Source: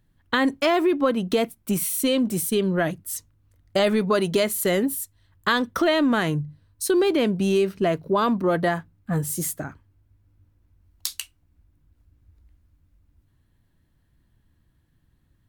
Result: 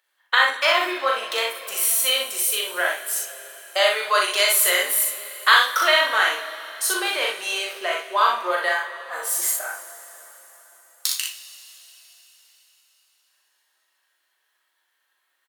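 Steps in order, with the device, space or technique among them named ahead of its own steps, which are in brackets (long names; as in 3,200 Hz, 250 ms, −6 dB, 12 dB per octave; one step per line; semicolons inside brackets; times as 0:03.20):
high-pass filter 500 Hz 24 dB per octave
filter by subtraction (in parallel: low-pass filter 1,800 Hz 12 dB per octave + polarity inversion)
0:04.02–0:05.94: on the sum: parametric band 16,000 Hz +3.5 dB 2.7 octaves
ambience of single reflections 39 ms −4.5 dB, 61 ms −4 dB
coupled-rooms reverb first 0.34 s, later 4.4 s, from −18 dB, DRR 2.5 dB
level +2.5 dB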